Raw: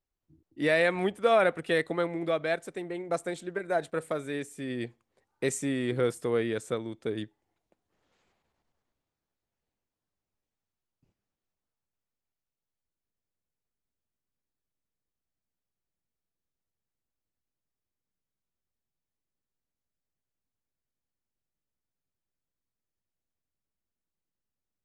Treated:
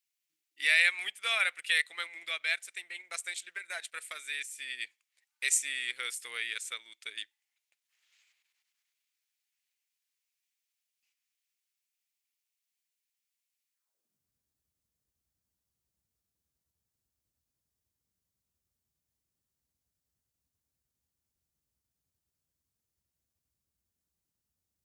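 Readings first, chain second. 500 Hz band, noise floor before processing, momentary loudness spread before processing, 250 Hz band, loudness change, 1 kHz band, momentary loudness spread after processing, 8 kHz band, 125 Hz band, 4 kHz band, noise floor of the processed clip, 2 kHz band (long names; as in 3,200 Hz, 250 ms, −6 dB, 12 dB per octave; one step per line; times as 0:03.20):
−24.5 dB, below −85 dBFS, 12 LU, below −30 dB, −1.5 dB, −11.5 dB, 15 LU, +8.0 dB, below −40 dB, +7.5 dB, below −85 dBFS, +4.0 dB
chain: high-pass filter sweep 2,300 Hz → 63 Hz, 0:13.72–0:14.31
transient designer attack 0 dB, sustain −4 dB
bass and treble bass +4 dB, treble +9 dB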